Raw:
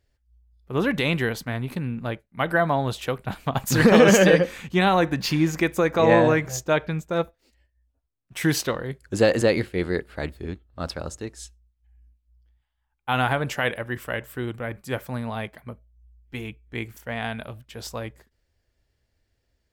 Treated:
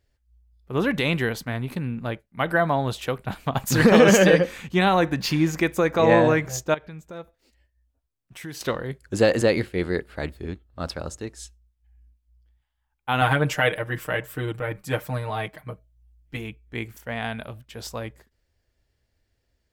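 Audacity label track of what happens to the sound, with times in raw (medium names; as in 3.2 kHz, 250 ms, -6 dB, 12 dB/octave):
6.740000	8.610000	compression 2:1, threshold -45 dBFS
13.210000	16.370000	comb 6.5 ms, depth 94%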